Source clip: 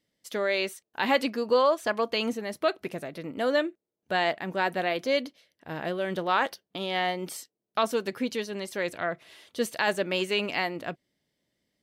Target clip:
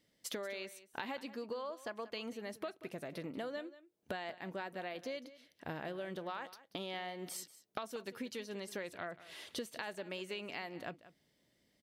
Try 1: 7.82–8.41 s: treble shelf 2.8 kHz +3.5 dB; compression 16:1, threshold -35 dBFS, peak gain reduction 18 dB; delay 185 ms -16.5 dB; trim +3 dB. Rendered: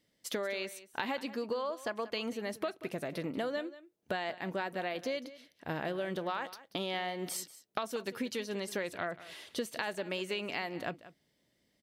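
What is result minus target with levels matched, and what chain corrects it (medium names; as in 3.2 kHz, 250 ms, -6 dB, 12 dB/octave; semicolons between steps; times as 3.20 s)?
compression: peak gain reduction -6.5 dB
7.82–8.41 s: treble shelf 2.8 kHz +3.5 dB; compression 16:1, threshold -42 dBFS, peak gain reduction 24.5 dB; delay 185 ms -16.5 dB; trim +3 dB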